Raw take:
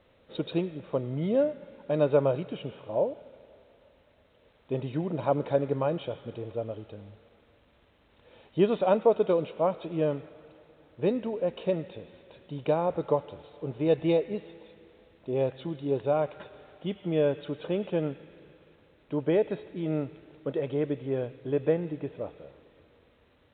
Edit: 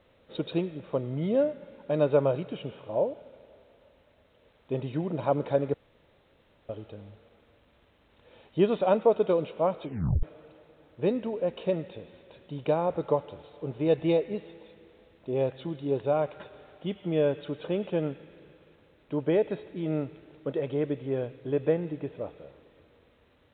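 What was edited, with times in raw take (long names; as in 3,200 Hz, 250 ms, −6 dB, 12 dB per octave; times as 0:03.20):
0:05.74–0:06.69: fill with room tone
0:09.83: tape stop 0.40 s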